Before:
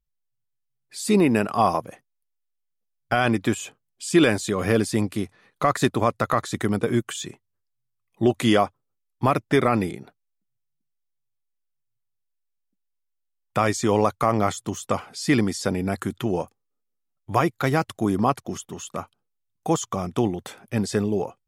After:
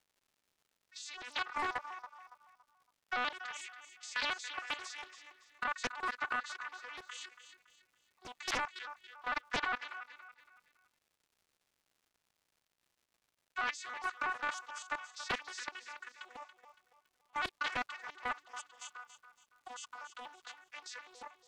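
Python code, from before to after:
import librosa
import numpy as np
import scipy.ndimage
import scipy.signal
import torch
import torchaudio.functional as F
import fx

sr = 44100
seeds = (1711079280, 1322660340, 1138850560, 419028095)

y = fx.vocoder_arp(x, sr, chord='minor triad', root=59, every_ms=81)
y = scipy.signal.sosfilt(scipy.signal.butter(4, 1200.0, 'highpass', fs=sr, output='sos'), y)
y = fx.high_shelf(y, sr, hz=5600.0, db=-3.5)
y = fx.level_steps(y, sr, step_db=13)
y = fx.dmg_crackle(y, sr, seeds[0], per_s=210.0, level_db=-66.0)
y = fx.echo_feedback(y, sr, ms=281, feedback_pct=35, wet_db=-11.0)
y = fx.doppler_dist(y, sr, depth_ms=0.61)
y = y * librosa.db_to_amplitude(5.0)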